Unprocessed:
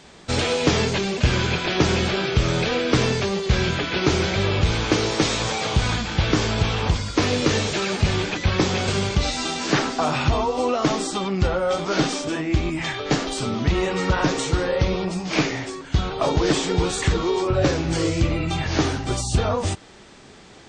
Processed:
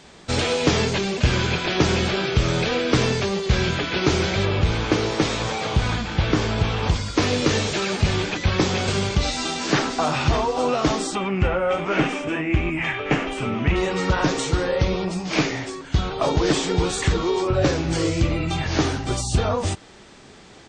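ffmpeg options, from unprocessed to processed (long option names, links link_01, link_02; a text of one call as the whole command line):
ffmpeg -i in.wav -filter_complex "[0:a]asettb=1/sr,asplit=3[link_01][link_02][link_03];[link_01]atrim=end=4.454[link_04];[link_02]atrim=start=4.45:end=6.83,asetpts=PTS-STARTPTS,afade=type=in:duration=0.004:curve=qsin,afade=type=out:start_time=2.376:duration=0.004:curve=qsin,highshelf=frequency=4200:gain=-7.5[link_05];[link_03]atrim=start=6.826[link_06];[link_04][link_05]acrossfade=duration=0.004:curve1=hsin:curve2=qsin[link_07];[link_07][link_06]acrossfade=duration=0.004:curve1=qsin:curve2=hsin,asplit=2[link_08][link_09];[link_09]afade=type=in:start_time=9.32:duration=0.01,afade=type=out:start_time=10.33:duration=0.01,aecho=0:1:580|1160|1740:0.316228|0.0790569|0.0197642[link_10];[link_08][link_10]amix=inputs=2:normalize=0,asettb=1/sr,asplit=3[link_11][link_12][link_13];[link_11]atrim=end=11.154[link_14];[link_12]atrim=start=11.15:end=13.76,asetpts=PTS-STARTPTS,afade=type=in:duration=0.004:curve=qsin,afade=type=out:start_time=2.606:duration=0.004:curve=qsin,highshelf=frequency=3300:width_type=q:width=3:gain=-8.5[link_15];[link_13]atrim=start=13.756[link_16];[link_14][link_15]acrossfade=duration=0.004:curve1=hsin:curve2=qsin[link_17];[link_17][link_16]acrossfade=duration=0.004:curve1=qsin:curve2=hsin" out.wav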